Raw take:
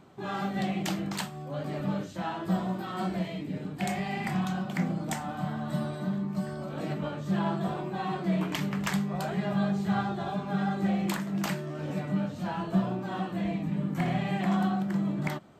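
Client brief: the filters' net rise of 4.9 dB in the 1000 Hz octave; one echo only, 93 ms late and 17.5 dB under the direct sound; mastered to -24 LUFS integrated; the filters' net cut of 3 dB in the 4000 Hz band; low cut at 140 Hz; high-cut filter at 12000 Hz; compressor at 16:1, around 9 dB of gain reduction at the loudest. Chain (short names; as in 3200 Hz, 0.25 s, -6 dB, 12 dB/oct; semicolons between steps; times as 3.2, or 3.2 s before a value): HPF 140 Hz; LPF 12000 Hz; bell 1000 Hz +7 dB; bell 4000 Hz -4.5 dB; compressor 16:1, threshold -31 dBFS; echo 93 ms -17.5 dB; gain +12 dB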